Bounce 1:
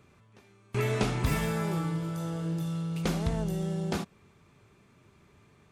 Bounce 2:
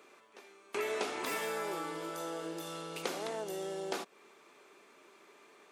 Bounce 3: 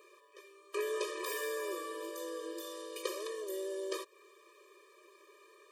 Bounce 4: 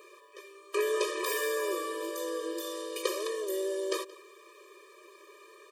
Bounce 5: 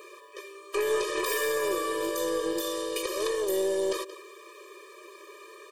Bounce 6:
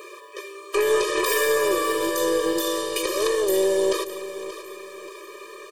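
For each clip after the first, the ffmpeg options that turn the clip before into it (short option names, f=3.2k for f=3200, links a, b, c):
-af "highpass=f=340:w=0.5412,highpass=f=340:w=1.3066,acompressor=threshold=-44dB:ratio=2,volume=5dB"
-af "highshelf=f=11k:g=7,afftfilt=real='re*eq(mod(floor(b*sr/1024/320),2),1)':imag='im*eq(mod(floor(b*sr/1024/320),2),1)':win_size=1024:overlap=0.75,volume=1dB"
-filter_complex "[0:a]asplit=2[a][b];[b]adelay=174.9,volume=-19dB,highshelf=f=4k:g=-3.94[c];[a][c]amix=inputs=2:normalize=0,volume=6.5dB"
-af "alimiter=level_in=0.5dB:limit=-24dB:level=0:latency=1:release=174,volume=-0.5dB,aeval=exprs='0.0596*(cos(1*acos(clip(val(0)/0.0596,-1,1)))-cos(1*PI/2))+0.00376*(cos(4*acos(clip(val(0)/0.0596,-1,1)))-cos(4*PI/2))+0.00119*(cos(6*acos(clip(val(0)/0.0596,-1,1)))-cos(6*PI/2))':c=same,volume=6dB"
-af "aecho=1:1:581|1162|1743|2324:0.211|0.0845|0.0338|0.0135,volume=6.5dB"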